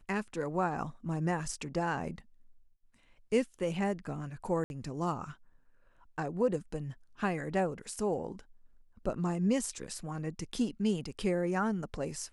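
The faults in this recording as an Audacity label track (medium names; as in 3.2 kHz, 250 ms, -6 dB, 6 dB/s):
4.640000	4.700000	dropout 61 ms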